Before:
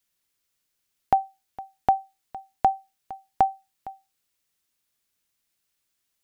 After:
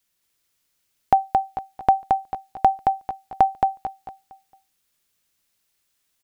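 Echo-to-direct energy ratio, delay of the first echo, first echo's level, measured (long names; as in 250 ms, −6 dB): −3.0 dB, 222 ms, −3.5 dB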